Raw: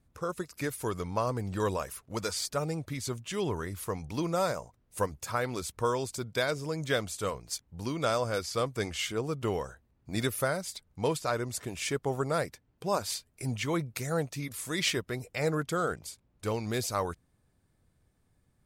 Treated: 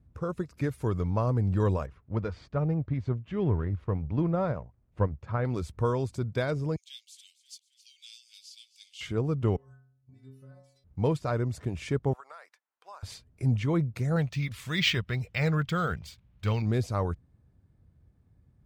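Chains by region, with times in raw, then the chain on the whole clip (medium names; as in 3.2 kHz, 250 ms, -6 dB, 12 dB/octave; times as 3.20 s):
1.86–5.45 s: companding laws mixed up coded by A + low-pass 2.6 kHz + bass shelf 170 Hz +3.5 dB
6.76–9.01 s: steep high-pass 2.8 kHz 48 dB/octave + frequency-shifting echo 267 ms, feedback 55%, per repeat -37 Hz, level -16 dB
9.56–10.84 s: compression 10:1, threshold -40 dBFS + inharmonic resonator 130 Hz, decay 0.73 s, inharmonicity 0.008
12.13–13.03 s: ladder high-pass 810 Hz, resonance 25% + compression 10:1, threshold -39 dBFS
14.16–16.62 s: FFT filter 200 Hz 0 dB, 280 Hz -8 dB, 750 Hz -1 dB, 3.1 kHz +13 dB, 11 kHz +1 dB + careless resampling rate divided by 2×, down none, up hold
whole clip: high-pass 63 Hz; RIAA curve playback; trim -2 dB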